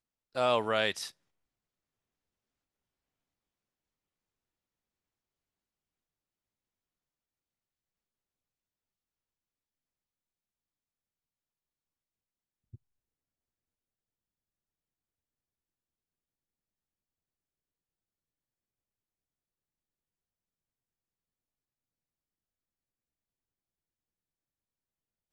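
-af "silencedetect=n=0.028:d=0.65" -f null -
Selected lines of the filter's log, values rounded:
silence_start: 1.06
silence_end: 25.32 | silence_duration: 24.26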